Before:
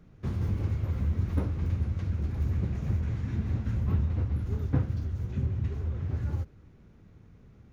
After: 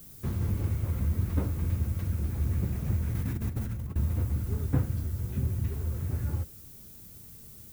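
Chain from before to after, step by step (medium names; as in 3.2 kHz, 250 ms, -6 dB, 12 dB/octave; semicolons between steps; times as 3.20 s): added noise violet -50 dBFS; 3.12–3.96 s: compressor with a negative ratio -31 dBFS, ratio -0.5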